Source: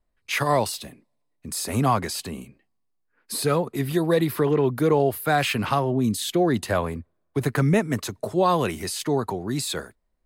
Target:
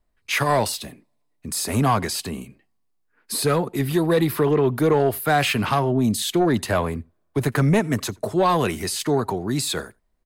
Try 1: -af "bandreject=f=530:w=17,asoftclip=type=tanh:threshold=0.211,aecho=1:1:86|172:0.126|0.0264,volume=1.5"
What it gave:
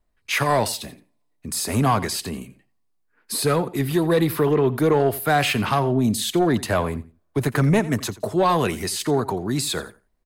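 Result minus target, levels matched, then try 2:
echo-to-direct +10 dB
-af "bandreject=f=530:w=17,asoftclip=type=tanh:threshold=0.211,aecho=1:1:86:0.0398,volume=1.5"

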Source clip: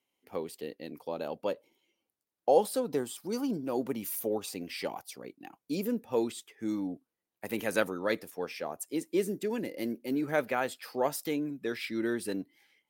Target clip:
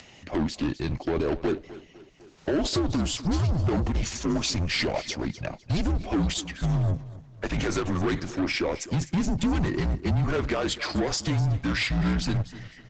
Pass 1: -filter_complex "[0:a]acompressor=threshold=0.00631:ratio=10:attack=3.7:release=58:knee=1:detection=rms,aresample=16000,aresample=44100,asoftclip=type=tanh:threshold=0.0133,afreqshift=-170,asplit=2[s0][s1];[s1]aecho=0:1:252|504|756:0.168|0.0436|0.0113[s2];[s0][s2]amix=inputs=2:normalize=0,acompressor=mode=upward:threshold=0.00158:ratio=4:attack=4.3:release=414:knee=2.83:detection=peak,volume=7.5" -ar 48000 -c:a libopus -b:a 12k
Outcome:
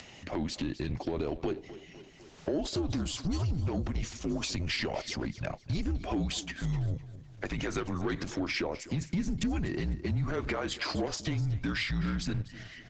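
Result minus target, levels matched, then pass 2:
compression: peak gain reduction +10.5 dB
-filter_complex "[0:a]acompressor=threshold=0.0237:ratio=10:attack=3.7:release=58:knee=1:detection=rms,aresample=16000,aresample=44100,asoftclip=type=tanh:threshold=0.0133,afreqshift=-170,asplit=2[s0][s1];[s1]aecho=0:1:252|504|756:0.168|0.0436|0.0113[s2];[s0][s2]amix=inputs=2:normalize=0,acompressor=mode=upward:threshold=0.00158:ratio=4:attack=4.3:release=414:knee=2.83:detection=peak,volume=7.5" -ar 48000 -c:a libopus -b:a 12k

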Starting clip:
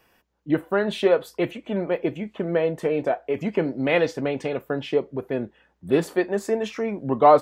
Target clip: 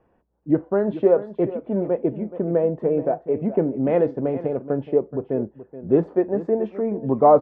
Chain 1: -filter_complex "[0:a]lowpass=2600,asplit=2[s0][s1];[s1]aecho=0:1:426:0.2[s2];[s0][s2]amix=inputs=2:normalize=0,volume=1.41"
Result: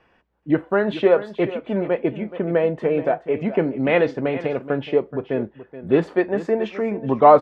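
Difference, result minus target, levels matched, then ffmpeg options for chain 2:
2 kHz band +14.0 dB
-filter_complex "[0:a]lowpass=730,asplit=2[s0][s1];[s1]aecho=0:1:426:0.2[s2];[s0][s2]amix=inputs=2:normalize=0,volume=1.41"

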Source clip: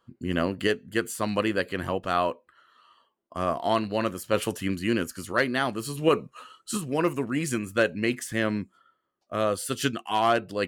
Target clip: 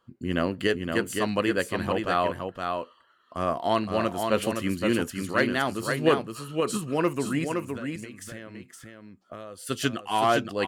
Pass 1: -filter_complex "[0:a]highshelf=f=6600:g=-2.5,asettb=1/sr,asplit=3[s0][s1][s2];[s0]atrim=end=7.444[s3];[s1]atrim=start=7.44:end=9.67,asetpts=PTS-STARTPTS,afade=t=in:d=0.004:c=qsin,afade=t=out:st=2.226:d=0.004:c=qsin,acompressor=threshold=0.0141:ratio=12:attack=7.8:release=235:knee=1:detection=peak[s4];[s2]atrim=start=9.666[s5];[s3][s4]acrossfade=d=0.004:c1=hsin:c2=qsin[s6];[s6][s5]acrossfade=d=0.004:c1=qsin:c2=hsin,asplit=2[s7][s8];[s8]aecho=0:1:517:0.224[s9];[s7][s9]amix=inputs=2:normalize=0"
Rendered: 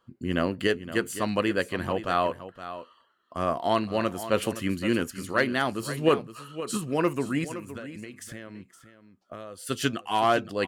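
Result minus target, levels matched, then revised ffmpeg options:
echo-to-direct -8 dB
-filter_complex "[0:a]highshelf=f=6600:g=-2.5,asettb=1/sr,asplit=3[s0][s1][s2];[s0]atrim=end=7.444[s3];[s1]atrim=start=7.44:end=9.67,asetpts=PTS-STARTPTS,afade=t=in:d=0.004:c=qsin,afade=t=out:st=2.226:d=0.004:c=qsin,acompressor=threshold=0.0141:ratio=12:attack=7.8:release=235:knee=1:detection=peak[s4];[s2]atrim=start=9.666[s5];[s3][s4]acrossfade=d=0.004:c1=hsin:c2=qsin[s6];[s6][s5]acrossfade=d=0.004:c1=qsin:c2=hsin,asplit=2[s7][s8];[s8]aecho=0:1:517:0.562[s9];[s7][s9]amix=inputs=2:normalize=0"

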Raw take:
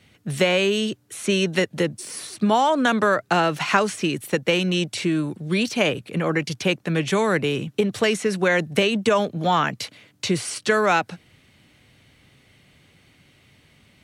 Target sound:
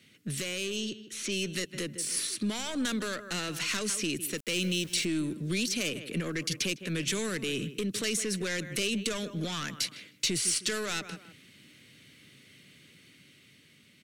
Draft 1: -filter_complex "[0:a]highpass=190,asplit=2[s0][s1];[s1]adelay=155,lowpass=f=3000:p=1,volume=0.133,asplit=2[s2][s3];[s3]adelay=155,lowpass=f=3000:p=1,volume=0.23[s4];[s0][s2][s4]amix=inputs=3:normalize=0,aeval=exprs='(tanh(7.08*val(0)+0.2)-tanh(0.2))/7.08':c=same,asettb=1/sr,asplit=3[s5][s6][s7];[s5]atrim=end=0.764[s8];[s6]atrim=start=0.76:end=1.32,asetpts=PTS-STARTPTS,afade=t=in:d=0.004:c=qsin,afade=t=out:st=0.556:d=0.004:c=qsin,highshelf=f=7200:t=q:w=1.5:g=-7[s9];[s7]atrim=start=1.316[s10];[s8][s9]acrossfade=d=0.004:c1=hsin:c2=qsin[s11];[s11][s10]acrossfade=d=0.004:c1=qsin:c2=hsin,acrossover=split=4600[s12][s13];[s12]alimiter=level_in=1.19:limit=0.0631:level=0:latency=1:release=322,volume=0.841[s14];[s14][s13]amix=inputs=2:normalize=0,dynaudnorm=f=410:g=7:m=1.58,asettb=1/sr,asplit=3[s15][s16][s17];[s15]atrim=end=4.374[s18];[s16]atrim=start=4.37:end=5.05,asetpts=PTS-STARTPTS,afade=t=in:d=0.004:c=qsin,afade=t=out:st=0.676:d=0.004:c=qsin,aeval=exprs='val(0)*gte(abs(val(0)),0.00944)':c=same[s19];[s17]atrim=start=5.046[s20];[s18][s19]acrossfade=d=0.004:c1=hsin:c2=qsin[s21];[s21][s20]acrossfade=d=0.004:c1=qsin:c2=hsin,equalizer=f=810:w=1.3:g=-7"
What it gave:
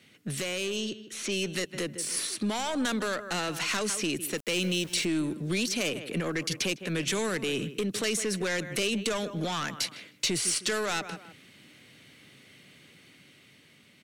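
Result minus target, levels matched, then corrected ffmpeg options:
1 kHz band +5.5 dB
-filter_complex "[0:a]highpass=190,asplit=2[s0][s1];[s1]adelay=155,lowpass=f=3000:p=1,volume=0.133,asplit=2[s2][s3];[s3]adelay=155,lowpass=f=3000:p=1,volume=0.23[s4];[s0][s2][s4]amix=inputs=3:normalize=0,aeval=exprs='(tanh(7.08*val(0)+0.2)-tanh(0.2))/7.08':c=same,asettb=1/sr,asplit=3[s5][s6][s7];[s5]atrim=end=0.764[s8];[s6]atrim=start=0.76:end=1.32,asetpts=PTS-STARTPTS,afade=t=in:d=0.004:c=qsin,afade=t=out:st=0.556:d=0.004:c=qsin,highshelf=f=7200:t=q:w=1.5:g=-7[s9];[s7]atrim=start=1.316[s10];[s8][s9]acrossfade=d=0.004:c1=hsin:c2=qsin[s11];[s11][s10]acrossfade=d=0.004:c1=qsin:c2=hsin,acrossover=split=4600[s12][s13];[s12]alimiter=level_in=1.19:limit=0.0631:level=0:latency=1:release=322,volume=0.841[s14];[s14][s13]amix=inputs=2:normalize=0,dynaudnorm=f=410:g=7:m=1.58,asettb=1/sr,asplit=3[s15][s16][s17];[s15]atrim=end=4.374[s18];[s16]atrim=start=4.37:end=5.05,asetpts=PTS-STARTPTS,afade=t=in:d=0.004:c=qsin,afade=t=out:st=0.676:d=0.004:c=qsin,aeval=exprs='val(0)*gte(abs(val(0)),0.00944)':c=same[s19];[s17]atrim=start=5.046[s20];[s18][s19]acrossfade=d=0.004:c1=hsin:c2=qsin[s21];[s21][s20]acrossfade=d=0.004:c1=qsin:c2=hsin,equalizer=f=810:w=1.3:g=-18.5"

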